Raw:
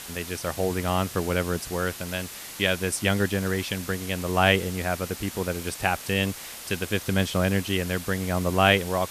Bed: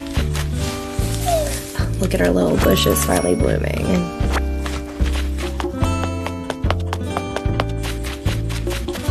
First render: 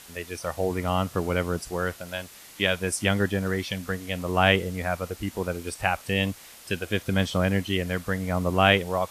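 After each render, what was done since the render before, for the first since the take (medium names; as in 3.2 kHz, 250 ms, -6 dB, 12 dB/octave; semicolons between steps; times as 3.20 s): noise print and reduce 8 dB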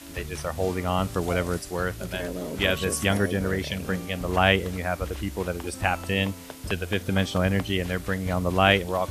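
add bed -16.5 dB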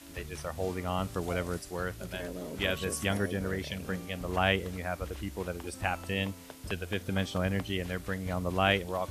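trim -7 dB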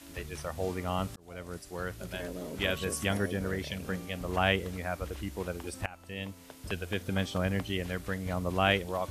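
1.16–2.31 s: fade in equal-power; 5.86–6.75 s: fade in, from -19 dB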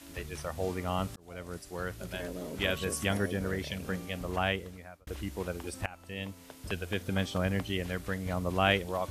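4.18–5.07 s: fade out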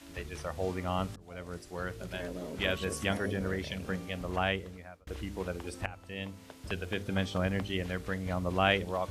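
treble shelf 9.8 kHz -11.5 dB; de-hum 50.32 Hz, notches 10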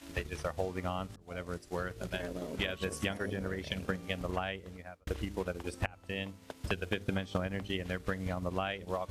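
compression 5:1, threshold -33 dBFS, peak gain reduction 11 dB; transient shaper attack +7 dB, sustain -6 dB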